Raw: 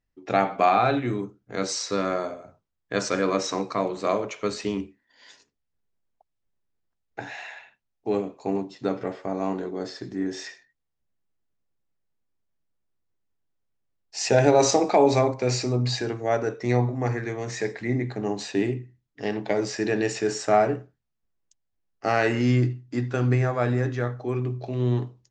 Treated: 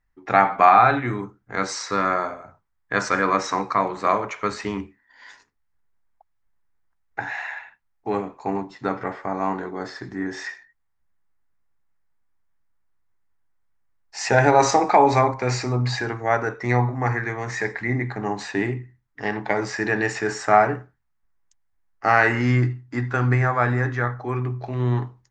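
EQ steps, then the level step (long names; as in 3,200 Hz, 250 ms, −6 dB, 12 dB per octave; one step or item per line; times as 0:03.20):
low-shelf EQ 90 Hz +11 dB
flat-topped bell 1,300 Hz +11 dB
−1.5 dB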